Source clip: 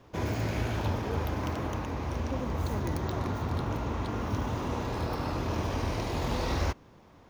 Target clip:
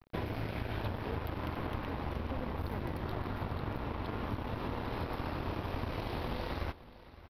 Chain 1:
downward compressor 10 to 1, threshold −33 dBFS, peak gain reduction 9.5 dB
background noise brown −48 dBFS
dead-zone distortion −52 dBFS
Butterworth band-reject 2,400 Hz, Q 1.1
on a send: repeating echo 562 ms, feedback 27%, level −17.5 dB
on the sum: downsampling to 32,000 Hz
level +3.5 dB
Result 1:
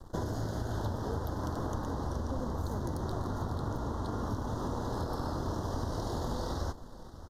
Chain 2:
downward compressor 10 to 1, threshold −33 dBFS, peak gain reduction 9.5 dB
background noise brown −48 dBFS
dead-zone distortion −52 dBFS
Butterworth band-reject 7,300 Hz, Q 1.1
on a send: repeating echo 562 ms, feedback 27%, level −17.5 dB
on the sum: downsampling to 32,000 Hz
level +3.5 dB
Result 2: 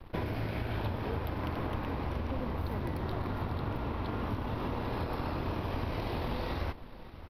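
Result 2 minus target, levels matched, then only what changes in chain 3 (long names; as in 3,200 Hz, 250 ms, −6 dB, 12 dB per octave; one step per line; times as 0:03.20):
dead-zone distortion: distortion −10 dB
change: dead-zone distortion −42 dBFS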